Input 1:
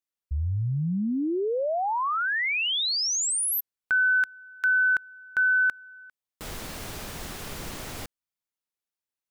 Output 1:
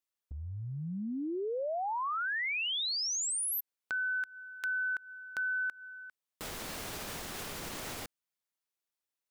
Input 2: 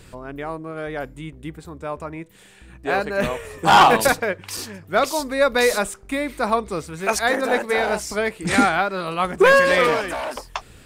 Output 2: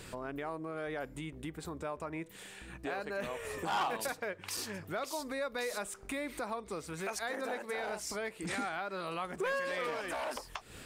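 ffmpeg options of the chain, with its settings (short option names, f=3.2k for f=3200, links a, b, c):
-af "acompressor=threshold=-32dB:ratio=6:attack=0.77:release=329:knee=1:detection=peak,lowshelf=f=150:g=-8.5"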